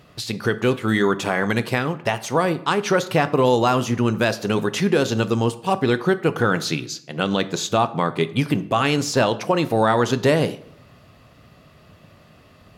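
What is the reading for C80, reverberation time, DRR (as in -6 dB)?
19.5 dB, 0.75 s, 12.0 dB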